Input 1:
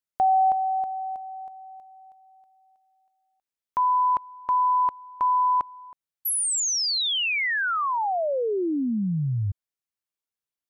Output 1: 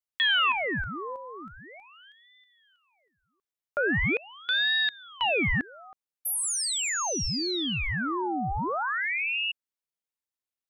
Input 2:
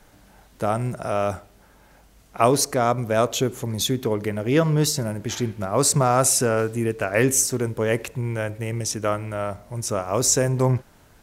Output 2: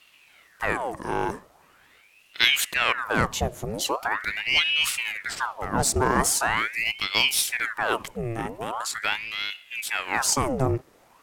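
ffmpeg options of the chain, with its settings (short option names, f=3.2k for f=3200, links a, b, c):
-af "aeval=exprs='0.75*(cos(1*acos(clip(val(0)/0.75,-1,1)))-cos(1*PI/2))+0.188*(cos(2*acos(clip(val(0)/0.75,-1,1)))-cos(2*PI/2))':c=same,aeval=exprs='val(0)*sin(2*PI*1500*n/s+1500*0.85/0.42*sin(2*PI*0.42*n/s))':c=same,volume=-1dB"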